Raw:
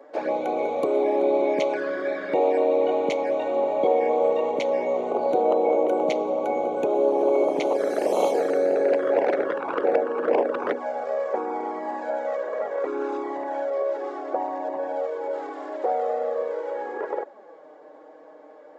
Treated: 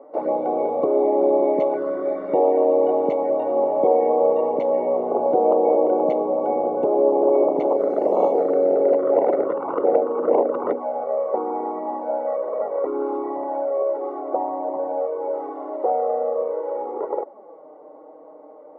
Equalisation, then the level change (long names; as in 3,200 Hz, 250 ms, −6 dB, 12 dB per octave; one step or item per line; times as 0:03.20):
Savitzky-Golay smoothing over 65 samples
+3.5 dB